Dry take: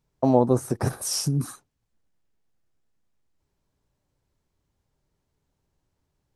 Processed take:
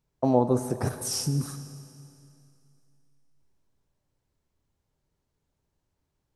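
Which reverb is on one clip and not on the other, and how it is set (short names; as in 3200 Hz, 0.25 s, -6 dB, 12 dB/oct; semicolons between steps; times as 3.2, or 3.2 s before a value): Schroeder reverb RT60 2.6 s, combs from 28 ms, DRR 10.5 dB; gain -3 dB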